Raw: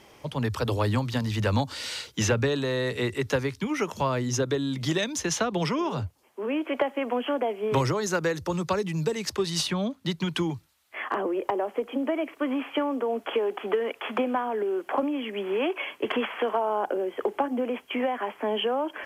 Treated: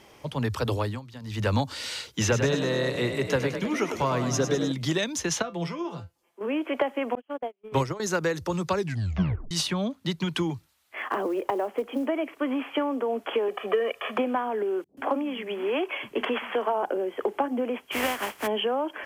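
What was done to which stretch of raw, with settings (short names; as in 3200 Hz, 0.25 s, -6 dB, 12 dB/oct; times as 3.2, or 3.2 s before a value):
0.74–1.47 dip -15 dB, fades 0.27 s
2.22–4.72 frequency-shifting echo 0.102 s, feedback 63%, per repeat +30 Hz, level -8 dB
5.42–6.41 resonator 170 Hz, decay 0.18 s, mix 80%
7.15–8 gate -25 dBFS, range -43 dB
8.77 tape stop 0.74 s
10.97–12.07 short-mantissa float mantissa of 4-bit
13.48–14.17 comb 1.7 ms
14.84–16.83 bands offset in time lows, highs 0.13 s, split 190 Hz
17.91–18.46 spectral contrast lowered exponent 0.46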